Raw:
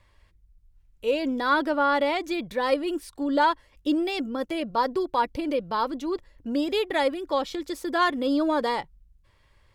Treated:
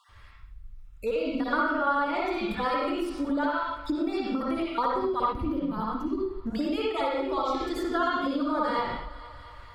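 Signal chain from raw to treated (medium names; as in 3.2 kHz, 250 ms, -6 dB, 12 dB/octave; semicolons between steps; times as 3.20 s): random holes in the spectrogram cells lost 26%; bass shelf 250 Hz +11 dB; reverberation, pre-delay 53 ms, DRR -6 dB; time-frequency box 5.32–6.46 s, 400–9900 Hz -12 dB; thinning echo 230 ms, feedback 60%, high-pass 250 Hz, level -23 dB; compression 10:1, threshold -21 dBFS, peak gain reduction 13.5 dB; peaking EQ 1.3 kHz +12.5 dB 0.3 oct; tape noise reduction on one side only encoder only; trim -4 dB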